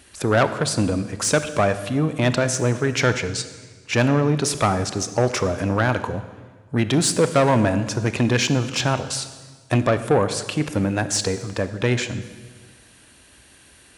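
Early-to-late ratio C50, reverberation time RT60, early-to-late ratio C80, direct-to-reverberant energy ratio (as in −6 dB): 12.0 dB, 1.5 s, 13.5 dB, 11.0 dB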